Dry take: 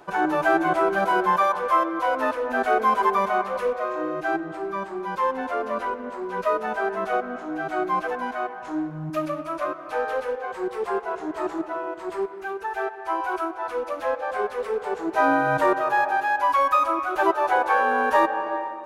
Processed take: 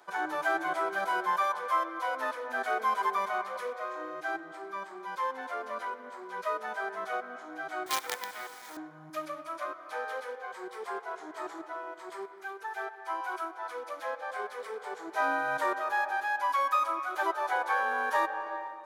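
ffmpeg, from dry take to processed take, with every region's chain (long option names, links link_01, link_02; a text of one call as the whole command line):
ffmpeg -i in.wav -filter_complex "[0:a]asettb=1/sr,asplit=3[link_01][link_02][link_03];[link_01]atrim=end=7.864[link_04];[link_02]atrim=start=7.86:end=8.77,asetpts=PTS-STARTPTS,afade=type=in:duration=0.004:curve=qsin,afade=type=out:start_time=0.906:duration=0.004:curve=qsin,aecho=1:1:2.2:0.75,atrim=end_sample=40131,acrusher=bits=4:dc=4:mix=0:aa=0.000001[link_05];[link_03]atrim=start=8.766[link_06];[link_04][link_05]acrossfade=duration=0.004:curve1=hsin:curve2=qsin[link_07];[link_07][link_06]acrossfade=duration=0.004:curve1=qsin:curve2=hsin,highpass=frequency=590:poles=1,tiltshelf=frequency=1100:gain=-3.5,bandreject=frequency=2700:width=7.2,volume=-6.5dB" out.wav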